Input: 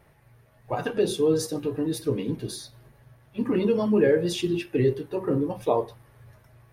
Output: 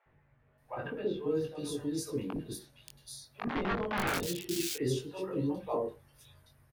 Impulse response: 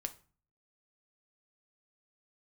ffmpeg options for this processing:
-filter_complex "[0:a]asettb=1/sr,asplit=3[a][b][c];[a]atrim=end=2.194[d];[b]atrim=start=2.19:end=4.23,asetpts=PTS-STARTPTS,afade=t=in:d=0.004:c=qsin,afade=t=out:st=2.036:d=0.004:c=qsin,aeval=exprs='(mod(7.5*val(0)+1,2)-1)/7.5':c=same[e];[c]atrim=start=4.226[f];[d][e]acrossfade=d=0.004:c1=hsin:c2=qsin[g];[g][f]acrossfade=d=0.004:c1=qsin:c2=hsin,asplit=2[h][i];[i]adelay=21,volume=-3.5dB[j];[h][j]amix=inputs=2:normalize=0,acrossover=split=570|3100[k][l][m];[k]adelay=60[n];[m]adelay=580[o];[n][l][o]amix=inputs=3:normalize=0,volume=-9dB"

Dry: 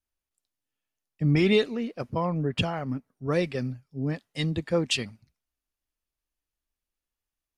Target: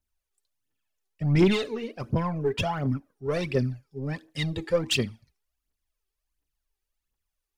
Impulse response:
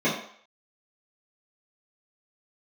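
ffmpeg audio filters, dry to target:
-filter_complex "[0:a]asplit=2[a][b];[1:a]atrim=start_sample=2205,asetrate=66150,aresample=44100[c];[b][c]afir=irnorm=-1:irlink=0,volume=-29.5dB[d];[a][d]amix=inputs=2:normalize=0,asoftclip=type=tanh:threshold=-20dB,aphaser=in_gain=1:out_gain=1:delay=2.7:decay=0.65:speed=1.4:type=triangular"

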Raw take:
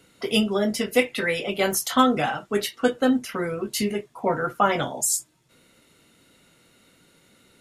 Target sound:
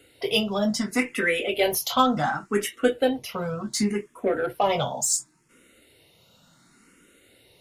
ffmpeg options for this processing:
-filter_complex "[0:a]asplit=2[a][b];[b]asoftclip=type=tanh:threshold=-21.5dB,volume=-6.5dB[c];[a][c]amix=inputs=2:normalize=0,asplit=2[d][e];[e]afreqshift=0.69[f];[d][f]amix=inputs=2:normalize=1"

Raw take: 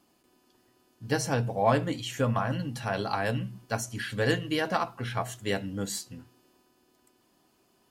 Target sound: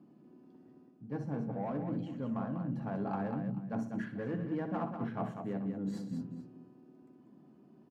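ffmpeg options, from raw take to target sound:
-filter_complex "[0:a]highpass=76,bandreject=f=60:t=h:w=6,bandreject=f=120:t=h:w=6,bandreject=f=180:t=h:w=6,asplit=2[a][b];[b]adynamicsmooth=sensitivity=4.5:basefreq=620,volume=1dB[c];[a][c]amix=inputs=2:normalize=0,asoftclip=type=tanh:threshold=-16dB,firequalizer=gain_entry='entry(100,0);entry(150,13);entry(430,0);entry(3300,-17);entry(8800,-28)':delay=0.05:min_phase=1,areverse,acompressor=threshold=-32dB:ratio=12,areverse,lowshelf=f=110:g=-10.5,aecho=1:1:62|123|194|433:0.299|0.119|0.447|0.112"

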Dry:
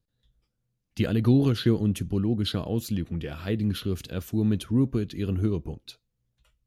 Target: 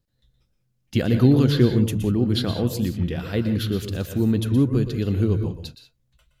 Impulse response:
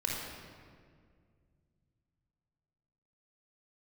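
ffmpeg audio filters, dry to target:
-filter_complex "[0:a]asplit=2[a][b];[1:a]atrim=start_sample=2205,atrim=end_sample=3969,adelay=124[c];[b][c]afir=irnorm=-1:irlink=0,volume=-11dB[d];[a][d]amix=inputs=2:normalize=0,asetrate=45938,aresample=44100,volume=4dB"

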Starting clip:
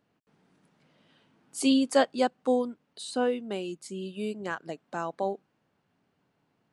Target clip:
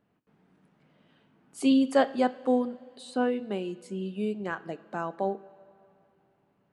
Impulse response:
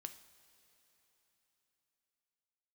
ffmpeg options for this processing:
-filter_complex "[0:a]asplit=2[a][b];[b]lowshelf=f=200:g=5.5[c];[1:a]atrim=start_sample=2205,asetrate=61740,aresample=44100,lowpass=3.3k[d];[c][d]afir=irnorm=-1:irlink=0,volume=10.5dB[e];[a][e]amix=inputs=2:normalize=0,volume=-7dB"

